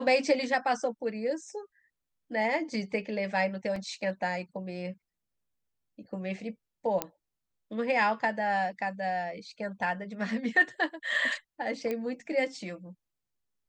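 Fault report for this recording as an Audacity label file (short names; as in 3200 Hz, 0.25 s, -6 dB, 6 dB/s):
3.760000	3.760000	gap 2.9 ms
7.020000	7.020000	pop -12 dBFS
11.910000	11.910000	pop -20 dBFS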